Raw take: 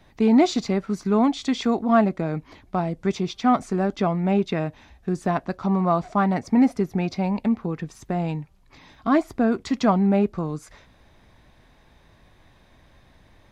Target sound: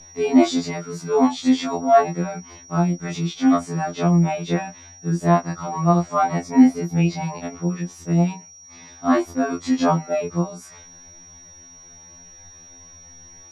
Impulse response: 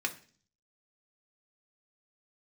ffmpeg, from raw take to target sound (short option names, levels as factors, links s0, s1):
-af "afftfilt=real='re':imag='-im':win_size=2048:overlap=0.75,aeval=exprs='val(0)+0.00562*sin(2*PI*5700*n/s)':c=same,afftfilt=real='re*2*eq(mod(b,4),0)':imag='im*2*eq(mod(b,4),0)':win_size=2048:overlap=0.75,volume=2.11"